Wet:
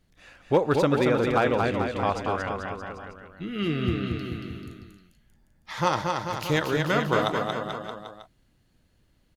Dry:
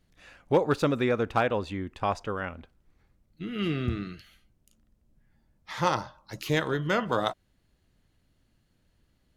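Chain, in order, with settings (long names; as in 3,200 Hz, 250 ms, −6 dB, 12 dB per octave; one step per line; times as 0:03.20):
bouncing-ball delay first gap 230 ms, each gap 0.9×, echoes 5
level +1.5 dB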